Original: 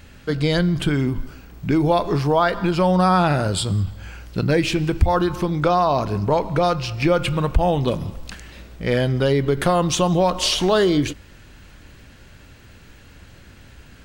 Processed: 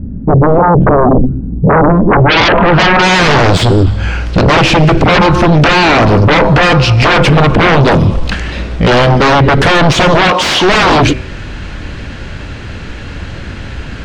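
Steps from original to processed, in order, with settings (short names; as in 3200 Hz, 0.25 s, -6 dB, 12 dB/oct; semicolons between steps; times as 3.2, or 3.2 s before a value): de-hum 127.3 Hz, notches 21; low-pass sweep 230 Hz -> 11000 Hz, 2.02–3.67; 10.28–10.74 weighting filter A; sine folder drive 17 dB, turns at -4.5 dBFS; air absorption 150 m; gain +1.5 dB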